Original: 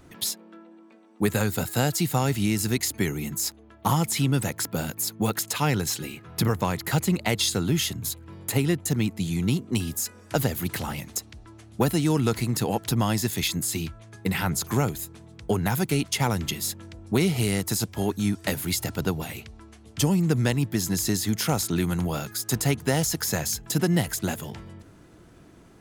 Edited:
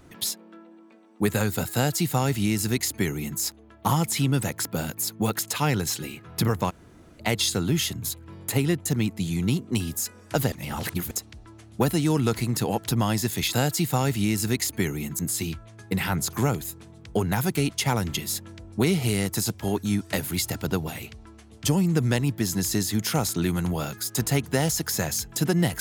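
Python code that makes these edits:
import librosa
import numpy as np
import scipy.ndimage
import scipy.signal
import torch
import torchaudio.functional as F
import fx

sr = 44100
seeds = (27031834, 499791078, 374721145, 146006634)

y = fx.edit(x, sr, fx.duplicate(start_s=1.74, length_s=1.66, to_s=13.53),
    fx.room_tone_fill(start_s=6.7, length_s=0.5, crossfade_s=0.02),
    fx.reverse_span(start_s=10.52, length_s=0.59), tone=tone)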